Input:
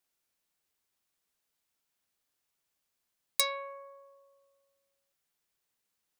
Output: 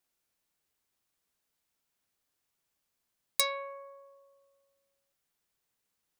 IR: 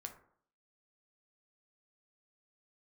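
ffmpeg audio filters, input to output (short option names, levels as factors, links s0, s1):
-filter_complex "[0:a]asplit=2[s0][s1];[s1]lowshelf=f=430:g=9.5[s2];[1:a]atrim=start_sample=2205,lowpass=2500[s3];[s2][s3]afir=irnorm=-1:irlink=0,volume=0.282[s4];[s0][s4]amix=inputs=2:normalize=0"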